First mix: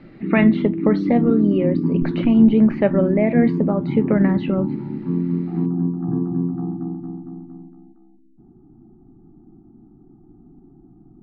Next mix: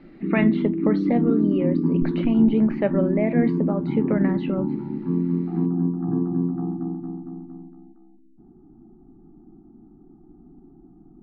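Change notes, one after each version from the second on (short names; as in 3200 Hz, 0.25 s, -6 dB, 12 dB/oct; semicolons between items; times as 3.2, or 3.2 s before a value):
speech -4.5 dB; master: add bell 110 Hz -10 dB 0.65 oct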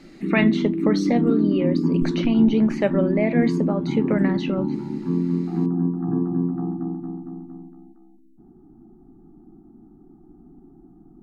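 master: remove air absorption 440 m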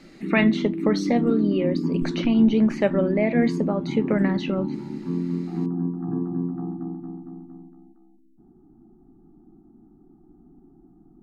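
background -4.0 dB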